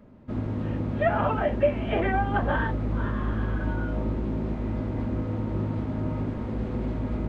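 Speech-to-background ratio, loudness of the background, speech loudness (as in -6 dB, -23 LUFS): 2.0 dB, -30.0 LUFS, -28.0 LUFS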